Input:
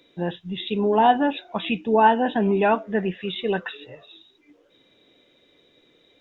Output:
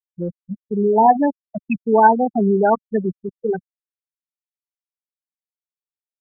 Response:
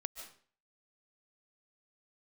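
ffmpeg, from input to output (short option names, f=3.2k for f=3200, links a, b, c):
-af "afftfilt=real='re*gte(hypot(re,im),0.355)':imag='im*gte(hypot(re,im),0.355)':win_size=1024:overlap=0.75,anlmdn=25.1,volume=4.5dB"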